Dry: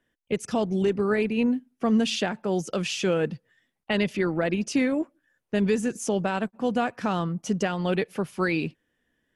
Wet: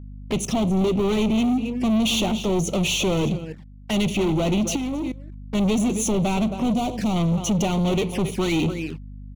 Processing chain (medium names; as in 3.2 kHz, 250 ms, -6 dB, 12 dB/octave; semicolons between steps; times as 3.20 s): delay 271 ms -17 dB; on a send at -17 dB: reverberation RT60 0.40 s, pre-delay 5 ms; on the sum: dynamic bell 490 Hz, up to -7 dB, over -42 dBFS, Q 4.3; waveshaping leveller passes 5; 6.73–7.16 s: peaking EQ 1.7 kHz -9.5 dB 1.3 oct; touch-sensitive flanger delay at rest 4.9 ms, full sweep at -18 dBFS; 4.76–5.55 s: level held to a coarse grid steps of 22 dB; hum 50 Hz, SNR 15 dB; 3.32–4.01 s: upward expansion 1.5:1, over -27 dBFS; trim -4.5 dB